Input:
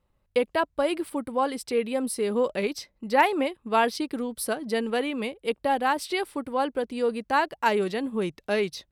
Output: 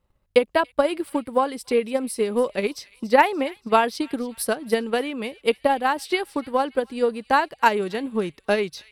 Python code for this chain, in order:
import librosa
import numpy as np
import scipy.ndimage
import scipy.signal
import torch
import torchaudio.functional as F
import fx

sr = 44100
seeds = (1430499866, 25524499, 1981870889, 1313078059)

y = fx.echo_wet_highpass(x, sr, ms=286, feedback_pct=49, hz=2100.0, wet_db=-16.5)
y = fx.transient(y, sr, attack_db=8, sustain_db=0)